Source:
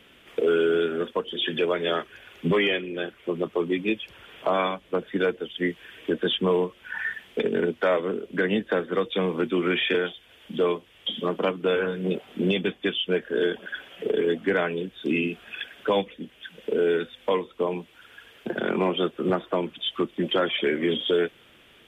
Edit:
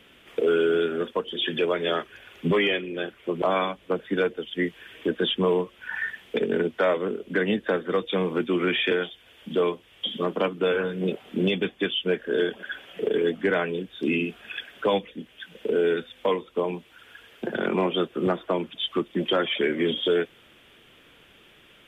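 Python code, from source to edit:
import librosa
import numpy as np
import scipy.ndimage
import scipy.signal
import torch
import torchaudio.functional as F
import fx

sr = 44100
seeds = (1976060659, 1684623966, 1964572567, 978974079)

y = fx.edit(x, sr, fx.cut(start_s=3.42, length_s=1.03), tone=tone)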